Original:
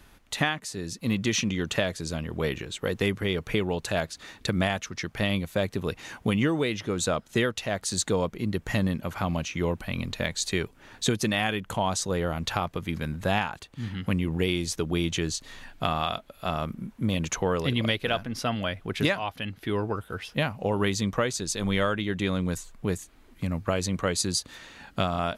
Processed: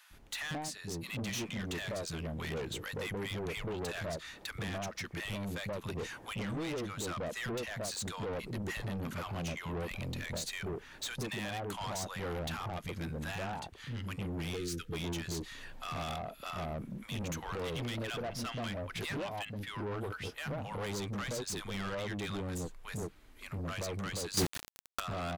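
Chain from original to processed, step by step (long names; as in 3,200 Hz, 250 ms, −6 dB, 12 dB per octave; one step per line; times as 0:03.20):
three-band delay without the direct sound highs, lows, mids 100/130 ms, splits 220/910 Hz
brickwall limiter −19 dBFS, peak gain reduction 8 dB
soft clipping −33 dBFS, distortion −8 dB
0:14.56–0:14.93: gain on a spectral selection 520–1,200 Hz −21 dB
0:24.37–0:25.00: log-companded quantiser 2 bits
level −1.5 dB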